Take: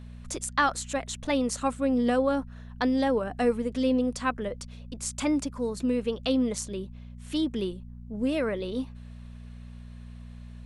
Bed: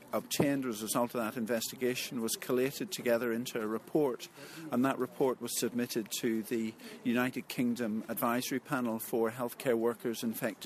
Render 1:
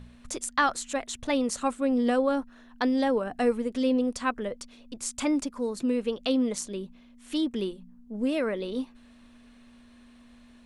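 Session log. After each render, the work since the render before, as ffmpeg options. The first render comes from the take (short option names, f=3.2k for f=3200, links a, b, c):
-af "bandreject=f=60:t=h:w=4,bandreject=f=120:t=h:w=4,bandreject=f=180:t=h:w=4"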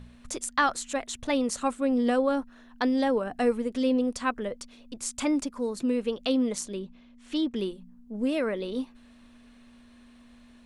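-filter_complex "[0:a]asettb=1/sr,asplit=3[a][b][c];[a]atrim=end=6.794[d];[b]atrim=start=6.79:end=7.56,asetpts=PTS-STARTPTS,afade=t=in:d=0.004:c=qsin,afade=t=out:st=0.766:d=0.004:c=qsin,lowpass=6.2k[e];[c]atrim=start=7.556[f];[d][e]acrossfade=d=0.004:c1=hsin:c2=qsin[g];[g][f]acrossfade=d=0.004:c1=qsin:c2=hsin"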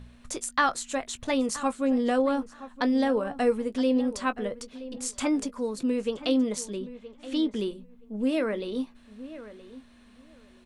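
-filter_complex "[0:a]asplit=2[a][b];[b]adelay=19,volume=-12.5dB[c];[a][c]amix=inputs=2:normalize=0,asplit=2[d][e];[e]adelay=972,lowpass=f=2.6k:p=1,volume=-15dB,asplit=2[f][g];[g]adelay=972,lowpass=f=2.6k:p=1,volume=0.17[h];[d][f][h]amix=inputs=3:normalize=0"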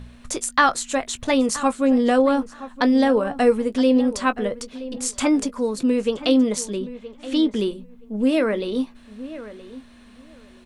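-af "volume=7dB"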